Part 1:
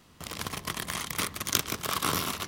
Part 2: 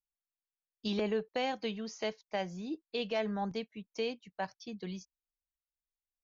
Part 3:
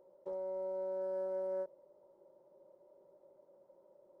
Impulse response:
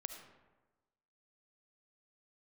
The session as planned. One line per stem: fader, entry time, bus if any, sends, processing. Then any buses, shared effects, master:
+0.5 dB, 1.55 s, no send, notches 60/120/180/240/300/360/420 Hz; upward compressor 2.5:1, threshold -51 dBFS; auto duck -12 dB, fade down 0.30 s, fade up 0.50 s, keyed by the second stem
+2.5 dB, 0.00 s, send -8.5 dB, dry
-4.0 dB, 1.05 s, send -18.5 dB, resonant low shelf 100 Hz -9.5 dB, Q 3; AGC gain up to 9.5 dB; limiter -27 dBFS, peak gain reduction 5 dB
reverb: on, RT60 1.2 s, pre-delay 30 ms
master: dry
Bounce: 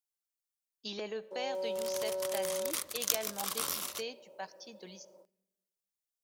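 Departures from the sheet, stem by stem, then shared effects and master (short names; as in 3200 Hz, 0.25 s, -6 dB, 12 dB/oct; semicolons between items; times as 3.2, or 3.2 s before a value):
stem 2 +2.5 dB -> -7.0 dB; master: extra tone controls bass -11 dB, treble +10 dB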